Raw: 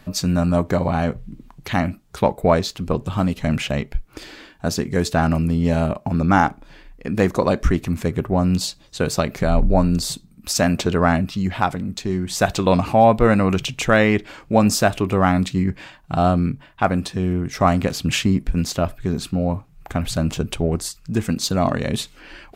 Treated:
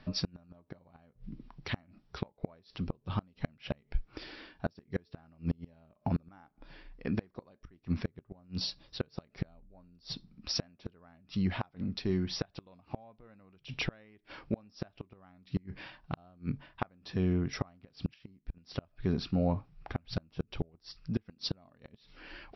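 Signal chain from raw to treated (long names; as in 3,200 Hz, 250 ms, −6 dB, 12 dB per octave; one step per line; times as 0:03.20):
linear-phase brick-wall low-pass 5,800 Hz
gate with flip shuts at −11 dBFS, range −34 dB
level −8 dB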